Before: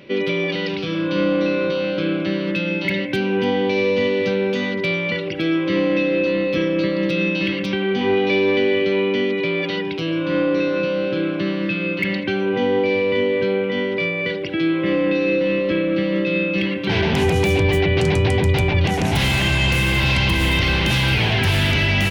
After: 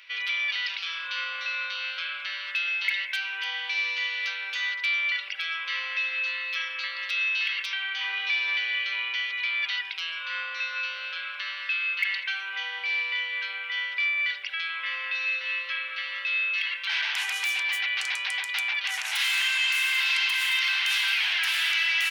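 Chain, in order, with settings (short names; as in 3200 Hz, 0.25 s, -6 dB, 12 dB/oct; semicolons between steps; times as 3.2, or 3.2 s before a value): inverse Chebyshev high-pass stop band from 220 Hz, stop band 80 dB; in parallel at +0.5 dB: limiter -20 dBFS, peak gain reduction 10 dB; on the sum: gain -6.5 dB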